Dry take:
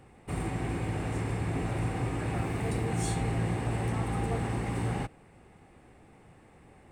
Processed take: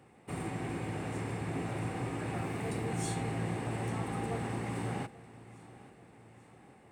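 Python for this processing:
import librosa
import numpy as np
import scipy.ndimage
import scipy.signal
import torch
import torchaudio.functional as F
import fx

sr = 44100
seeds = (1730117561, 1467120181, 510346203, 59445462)

y = scipy.signal.sosfilt(scipy.signal.butter(2, 120.0, 'highpass', fs=sr, output='sos'), x)
y = fx.echo_feedback(y, sr, ms=841, feedback_pct=54, wet_db=-19)
y = y * librosa.db_to_amplitude(-3.0)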